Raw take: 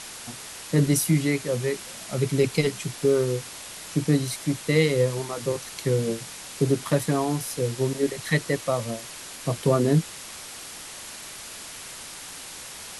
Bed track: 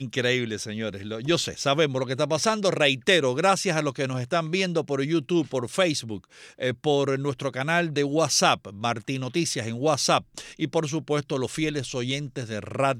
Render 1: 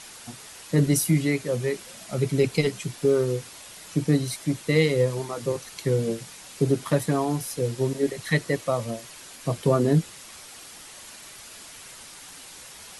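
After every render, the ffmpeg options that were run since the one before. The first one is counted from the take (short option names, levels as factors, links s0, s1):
-af "afftdn=nr=6:nf=-40"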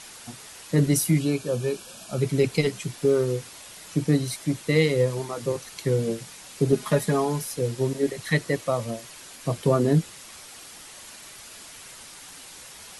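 -filter_complex "[0:a]asettb=1/sr,asplit=3[s0][s1][s2];[s0]atrim=end=1.194[s3];[s1]atrim=start=1.19:end=2.21,asetpts=PTS-STARTPTS,afade=t=in:d=0.004:c=qsin,afade=t=out:st=1.016:d=0.004:c=qsin,asuperstop=centerf=2000:order=8:qfactor=4.3[s4];[s2]atrim=start=2.206[s5];[s3][s4]acrossfade=d=0.004:c1=hsin:c2=qsin[s6];[s6][s5]acrossfade=d=0.004:c1=qsin:c2=hsin,asettb=1/sr,asplit=3[s7][s8][s9];[s7]atrim=end=6.724[s10];[s8]atrim=start=6.72:end=7.44,asetpts=PTS-STARTPTS,afade=t=in:d=0.004:c=qsin,afade=t=out:st=0.716:d=0.004:c=qsin,aecho=1:1:4.8:0.65,atrim=end_sample=31752[s11];[s9]atrim=start=7.436[s12];[s10][s11]acrossfade=d=0.004:c1=hsin:c2=qsin[s13];[s13][s12]acrossfade=d=0.004:c1=qsin:c2=hsin"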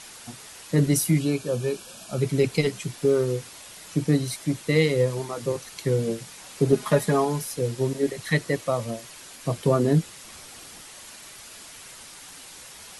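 -filter_complex "[0:a]asettb=1/sr,asplit=3[s0][s1][s2];[s0]atrim=end=6.374[s3];[s1]atrim=start=6.37:end=7.25,asetpts=PTS-STARTPTS,afade=t=in:d=0.004:c=qsin,afade=t=out:st=0.876:d=0.004:c=qsin,equalizer=f=860:t=o:w=2.2:g=3[s4];[s2]atrim=start=7.246[s5];[s3][s4]acrossfade=d=0.004:c1=hsin:c2=qsin[s6];[s6][s5]acrossfade=d=0.004:c1=qsin:c2=hsin,asettb=1/sr,asplit=3[s7][s8][s9];[s7]atrim=end=10.244[s10];[s8]atrim=start=10.24:end=10.81,asetpts=PTS-STARTPTS,afade=t=in:d=0.004:c=qsin,afade=t=out:st=0.566:d=0.004:c=qsin,lowshelf=f=390:g=5.5[s11];[s9]atrim=start=10.806[s12];[s10][s11]acrossfade=d=0.004:c1=hsin:c2=qsin[s13];[s13][s12]acrossfade=d=0.004:c1=qsin:c2=hsin"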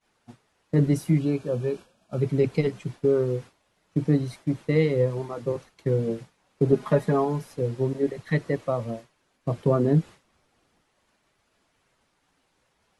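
-af "agate=range=0.0224:threshold=0.0251:ratio=3:detection=peak,lowpass=f=1100:p=1"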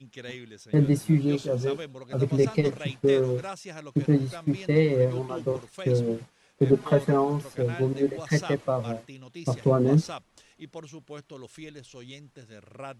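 -filter_complex "[1:a]volume=0.15[s0];[0:a][s0]amix=inputs=2:normalize=0"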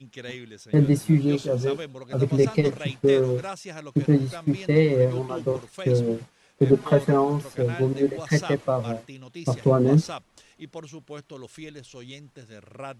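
-af "volume=1.33"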